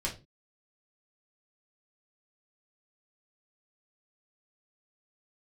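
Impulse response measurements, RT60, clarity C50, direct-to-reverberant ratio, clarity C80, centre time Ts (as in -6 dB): 0.30 s, 11.5 dB, -3.5 dB, 18.5 dB, 17 ms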